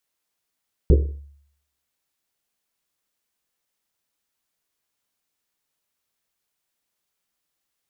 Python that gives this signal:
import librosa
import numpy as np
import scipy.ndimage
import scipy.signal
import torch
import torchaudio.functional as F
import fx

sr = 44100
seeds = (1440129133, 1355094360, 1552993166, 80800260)

y = fx.risset_drum(sr, seeds[0], length_s=1.1, hz=71.0, decay_s=0.67, noise_hz=390.0, noise_width_hz=230.0, noise_pct=25)